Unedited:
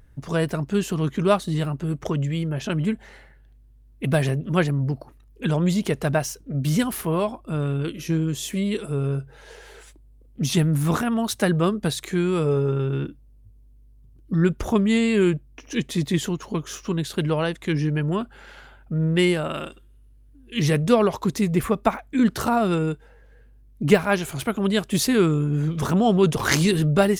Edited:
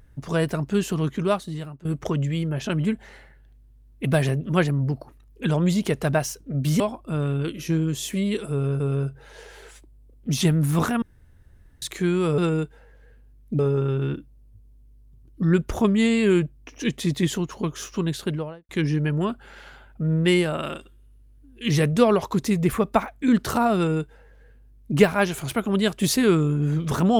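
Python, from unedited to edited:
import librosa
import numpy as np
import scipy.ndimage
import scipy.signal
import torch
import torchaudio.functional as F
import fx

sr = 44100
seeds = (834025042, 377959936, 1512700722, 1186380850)

y = fx.studio_fade_out(x, sr, start_s=17.03, length_s=0.57)
y = fx.edit(y, sr, fx.fade_out_to(start_s=0.96, length_s=0.89, floor_db=-17.5),
    fx.cut(start_s=6.8, length_s=0.4),
    fx.repeat(start_s=8.92, length_s=0.28, count=2),
    fx.room_tone_fill(start_s=11.14, length_s=0.8),
    fx.duplicate(start_s=22.67, length_s=1.21, to_s=12.5), tone=tone)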